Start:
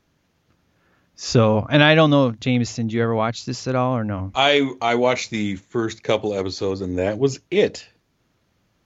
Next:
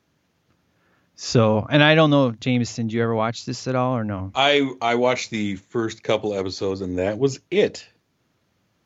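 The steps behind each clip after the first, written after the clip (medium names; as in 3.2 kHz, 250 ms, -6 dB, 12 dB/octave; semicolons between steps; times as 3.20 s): high-pass 77 Hz; trim -1 dB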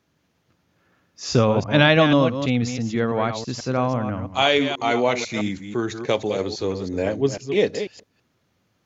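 chunks repeated in reverse 164 ms, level -8.5 dB; trim -1 dB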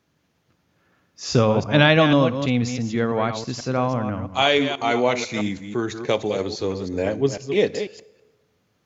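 reverberation RT60 1.4 s, pre-delay 3 ms, DRR 18.5 dB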